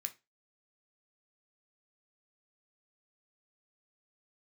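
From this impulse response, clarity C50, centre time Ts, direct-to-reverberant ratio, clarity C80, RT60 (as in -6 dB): 18.0 dB, 5 ms, 6.0 dB, 25.5 dB, 0.25 s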